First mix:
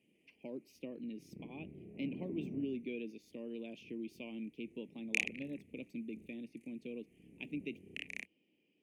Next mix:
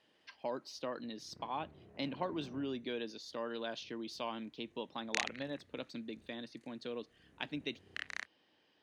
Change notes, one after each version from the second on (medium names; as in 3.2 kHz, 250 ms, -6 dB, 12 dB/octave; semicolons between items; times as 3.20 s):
speech +8.0 dB; master: remove FFT filter 100 Hz 0 dB, 190 Hz +11 dB, 400 Hz +7 dB, 1.5 kHz -27 dB, 2.4 kHz +10 dB, 4 kHz -15 dB, 13 kHz +10 dB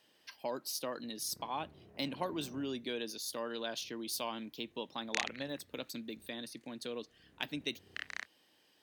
speech: remove distance through air 180 m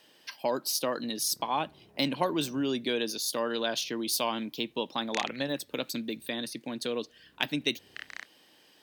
speech +9.0 dB; master: add peaking EQ 85 Hz -8.5 dB 0.21 oct